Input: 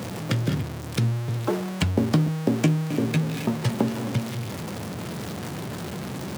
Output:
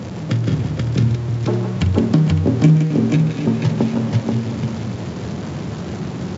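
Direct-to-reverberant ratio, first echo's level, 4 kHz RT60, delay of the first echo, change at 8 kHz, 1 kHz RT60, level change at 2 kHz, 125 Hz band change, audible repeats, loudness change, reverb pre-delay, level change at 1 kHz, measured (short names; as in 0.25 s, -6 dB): none, -14.0 dB, none, 45 ms, n/a, none, +1.5 dB, +8.5 dB, 5, +7.5 dB, none, +2.5 dB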